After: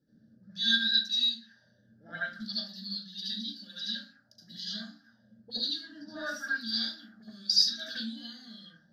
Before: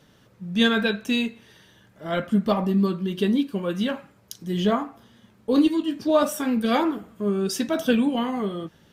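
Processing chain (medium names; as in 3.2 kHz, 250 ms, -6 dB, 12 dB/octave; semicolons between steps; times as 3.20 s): FFT filter 140 Hz 0 dB, 220 Hz +8 dB, 410 Hz -26 dB, 610 Hz -13 dB, 1.1 kHz -28 dB, 1.6 kHz +2 dB, 2.4 kHz -28 dB, 4.8 kHz +12 dB, 8.3 kHz -10 dB, 14 kHz +4 dB; auto-wah 360–4000 Hz, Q 3.7, up, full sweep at -22.5 dBFS; reverberation RT60 0.35 s, pre-delay 68 ms, DRR -7 dB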